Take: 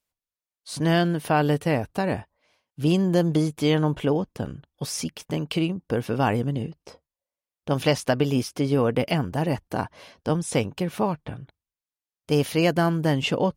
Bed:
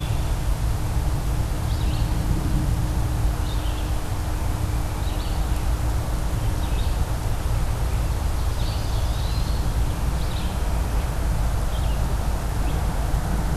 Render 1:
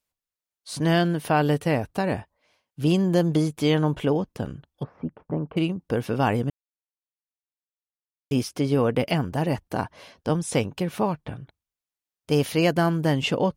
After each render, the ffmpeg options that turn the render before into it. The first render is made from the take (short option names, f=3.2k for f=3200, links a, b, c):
-filter_complex "[0:a]asettb=1/sr,asplit=3[a][b][c];[a]atrim=end=4.834[d];[b]atrim=start=4.83:end=5.57,asetpts=PTS-STARTPTS,afade=t=in:d=0.004:c=qsin,afade=t=out:st=0.736:d=0.004:c=qsin,lowpass=f=1.3k:w=0.5412,lowpass=f=1.3k:w=1.3066[e];[c]atrim=start=5.566[f];[d][e]acrossfade=d=0.004:c1=hsin:c2=qsin[g];[g][f]acrossfade=d=0.004:c1=qsin:c2=hsin,asplit=3[h][i][j];[h]atrim=end=6.5,asetpts=PTS-STARTPTS,afade=t=out:st=6.496:d=0.004:c=hsin[k];[i]atrim=start=6.5:end=8.31,asetpts=PTS-STARTPTS,volume=0[l];[j]atrim=start=8.31,asetpts=PTS-STARTPTS,afade=t=in:d=0.004:c=hsin[m];[k][l][m]concat=n=3:v=0:a=1"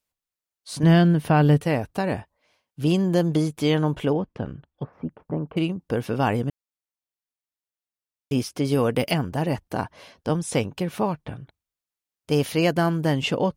-filter_complex "[0:a]asettb=1/sr,asplit=3[a][b][c];[a]atrim=end=0.834[d];[b]atrim=start=0.83:end=1.61,asetpts=PTS-STARTPTS,afade=t=in:d=0.004:c=qsin,afade=t=out:st=0.776:d=0.004:c=qsin,bass=f=250:g=9,treble=f=4k:g=-4[e];[c]atrim=start=1.606[f];[d][e]acrossfade=d=0.004:c1=hsin:c2=qsin[g];[g][f]acrossfade=d=0.004:c1=qsin:c2=hsin,asettb=1/sr,asplit=3[h][i][j];[h]atrim=end=4.134[k];[i]atrim=start=4.13:end=4.93,asetpts=PTS-STARTPTS,afade=t=in:d=0.004:c=qsin,afade=t=out:st=0.796:d=0.004:c=qsin,lowpass=2.8k[l];[j]atrim=start=4.926[m];[k][l]acrossfade=d=0.004:c1=hsin:c2=qsin[n];[n][m]acrossfade=d=0.004:c1=qsin:c2=hsin,asettb=1/sr,asplit=3[o][p][q];[o]atrim=end=8.654[r];[p]atrim=start=8.65:end=9.14,asetpts=PTS-STARTPTS,afade=t=in:d=0.004:c=qsin,afade=t=out:st=0.486:d=0.004:c=qsin,highshelf=f=4.8k:g=11[s];[q]atrim=start=9.136[t];[r][s]acrossfade=d=0.004:c1=hsin:c2=qsin[u];[u][t]acrossfade=d=0.004:c1=qsin:c2=hsin"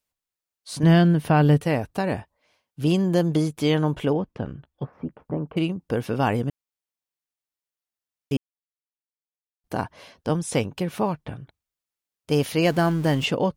-filter_complex "[0:a]asettb=1/sr,asplit=3[a][b][c];[a]atrim=end=4.544[d];[b]atrim=start=4.54:end=5.4,asetpts=PTS-STARTPTS,afade=t=in:d=0.004:c=qsin,afade=t=out:st=0.856:d=0.004:c=qsin,asplit=2[e][f];[f]adelay=15,volume=-11dB[g];[e][g]amix=inputs=2:normalize=0,atrim=end_sample=37926[h];[c]atrim=start=5.396[i];[d][h]acrossfade=d=0.004:c1=hsin:c2=qsin[j];[j][i]acrossfade=d=0.004:c1=qsin:c2=hsin,asettb=1/sr,asplit=3[k][l][m];[k]atrim=end=12.654[n];[l]atrim=start=12.65:end=13.26,asetpts=PTS-STARTPTS,afade=t=in:d=0.004:c=qsin,afade=t=out:st=0.606:d=0.004:c=qsin,aeval=exprs='val(0)+0.5*0.02*sgn(val(0))':c=same[o];[m]atrim=start=13.256[p];[n][o]acrossfade=d=0.004:c1=hsin:c2=qsin[q];[q][p]acrossfade=d=0.004:c1=qsin:c2=hsin,asplit=3[r][s][t];[r]atrim=end=8.37,asetpts=PTS-STARTPTS,afade=t=out:st=8.366:d=0.004:c=hsin[u];[s]atrim=start=8.37:end=9.64,asetpts=PTS-STARTPTS,volume=0[v];[t]atrim=start=9.64,asetpts=PTS-STARTPTS,afade=t=in:d=0.004:c=hsin[w];[u][v][w]concat=n=3:v=0:a=1"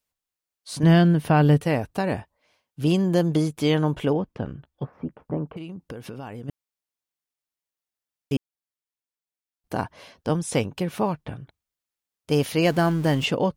-filter_complex "[0:a]asplit=3[a][b][c];[a]afade=t=out:st=5.52:d=0.02[d];[b]acompressor=threshold=-32dB:ratio=8:attack=3.2:release=140:knee=1:detection=peak,afade=t=in:st=5.52:d=0.02,afade=t=out:st=6.48:d=0.02[e];[c]afade=t=in:st=6.48:d=0.02[f];[d][e][f]amix=inputs=3:normalize=0"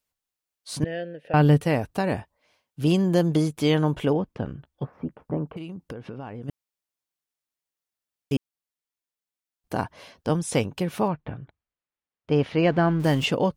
-filter_complex "[0:a]asettb=1/sr,asplit=3[a][b][c];[a]atrim=end=0.844[d];[b]atrim=start=0.84:end=1.34,asetpts=PTS-STARTPTS,afade=t=in:d=0.004:c=qsin,afade=t=out:st=0.496:d=0.004:c=qsin,asplit=3[e][f][g];[e]bandpass=f=530:t=q:w=8,volume=0dB[h];[f]bandpass=f=1.84k:t=q:w=8,volume=-6dB[i];[g]bandpass=f=2.48k:t=q:w=8,volume=-9dB[j];[h][i][j]amix=inputs=3:normalize=0[k];[c]atrim=start=1.336[l];[d][k]acrossfade=d=0.004:c1=hsin:c2=qsin[m];[m][l]acrossfade=d=0.004:c1=qsin:c2=hsin,asettb=1/sr,asplit=3[n][o][p];[n]atrim=end=5.934[q];[o]atrim=start=5.93:end=6.42,asetpts=PTS-STARTPTS,afade=t=in:d=0.004:c=qsin,afade=t=out:st=0.486:d=0.004:c=qsin,adynamicsmooth=sensitivity=1.5:basefreq=2.9k[r];[p]atrim=start=6.416[s];[q][r]acrossfade=d=0.004:c1=hsin:c2=qsin[t];[t][s]acrossfade=d=0.004:c1=qsin:c2=hsin,asettb=1/sr,asplit=3[u][v][w];[u]atrim=end=11.084[x];[v]atrim=start=11.08:end=13,asetpts=PTS-STARTPTS,afade=t=in:d=0.004:c=qsin,afade=t=out:st=1.916:d=0.004:c=qsin,lowpass=2.5k[y];[w]atrim=start=12.996[z];[x][y]acrossfade=d=0.004:c1=hsin:c2=qsin[aa];[aa][z]acrossfade=d=0.004:c1=qsin:c2=hsin"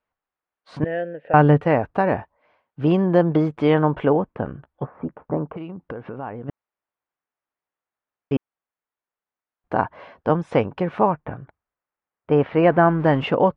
-af "lowpass=1.8k,equalizer=f=1.1k:w=0.39:g=9"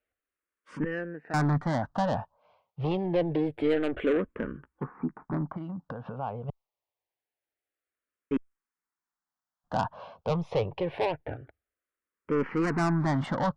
-filter_complex "[0:a]asoftclip=type=tanh:threshold=-19.5dB,asplit=2[a][b];[b]afreqshift=-0.26[c];[a][c]amix=inputs=2:normalize=1"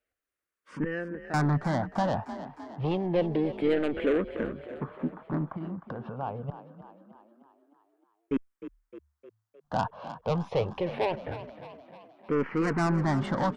-filter_complex "[0:a]asplit=7[a][b][c][d][e][f][g];[b]adelay=307,afreqshift=36,volume=-13dB[h];[c]adelay=614,afreqshift=72,volume=-18.2dB[i];[d]adelay=921,afreqshift=108,volume=-23.4dB[j];[e]adelay=1228,afreqshift=144,volume=-28.6dB[k];[f]adelay=1535,afreqshift=180,volume=-33.8dB[l];[g]adelay=1842,afreqshift=216,volume=-39dB[m];[a][h][i][j][k][l][m]amix=inputs=7:normalize=0"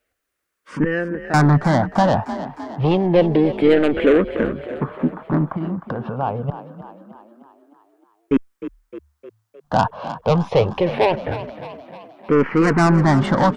-af "volume=11.5dB"